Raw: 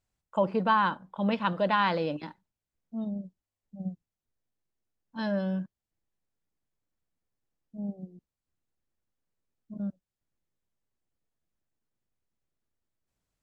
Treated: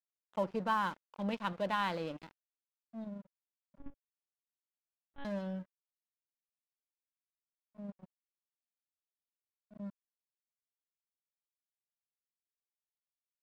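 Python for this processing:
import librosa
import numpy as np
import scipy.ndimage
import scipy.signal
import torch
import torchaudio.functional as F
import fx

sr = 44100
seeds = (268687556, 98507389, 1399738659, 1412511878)

y = np.sign(x) * np.maximum(np.abs(x) - 10.0 ** (-41.5 / 20.0), 0.0)
y = fx.lpc_monotone(y, sr, seeds[0], pitch_hz=280.0, order=10, at=(3.78, 5.25))
y = y * 10.0 ** (-7.5 / 20.0)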